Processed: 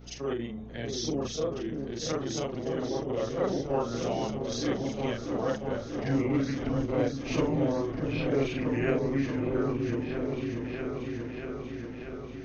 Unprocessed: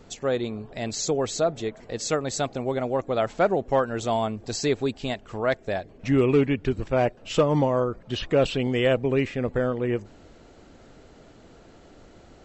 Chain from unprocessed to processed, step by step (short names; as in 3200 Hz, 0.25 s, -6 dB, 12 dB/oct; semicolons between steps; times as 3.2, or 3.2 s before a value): short-time reversal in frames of 0.102 s; formant shift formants -3 st; in parallel at 0 dB: compressor, threshold -36 dBFS, peak gain reduction 16 dB; on the sum: hum 60 Hz, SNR 16 dB; repeats that get brighter 0.637 s, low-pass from 400 Hz, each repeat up 2 oct, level -3 dB; gain -6 dB